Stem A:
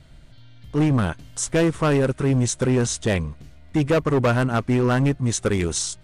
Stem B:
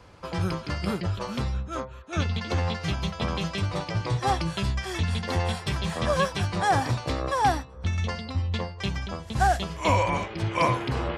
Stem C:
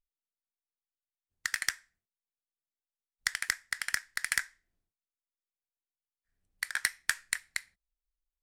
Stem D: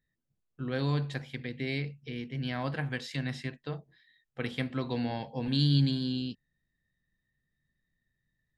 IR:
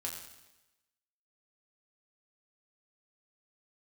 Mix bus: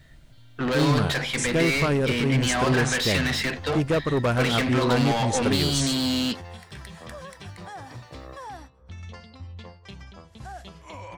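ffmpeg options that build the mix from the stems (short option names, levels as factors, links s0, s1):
-filter_complex "[0:a]volume=0.631[s0];[1:a]alimiter=limit=0.112:level=0:latency=1:release=91,adelay=1050,volume=0.251[s1];[2:a]volume=0.119[s2];[3:a]highpass=86,acompressor=threshold=0.0398:ratio=6,asplit=2[s3][s4];[s4]highpass=f=720:p=1,volume=31.6,asoftclip=type=tanh:threshold=0.112[s5];[s3][s5]amix=inputs=2:normalize=0,lowpass=f=6400:p=1,volume=0.501,volume=1.26[s6];[s0][s1][s2][s6]amix=inputs=4:normalize=0"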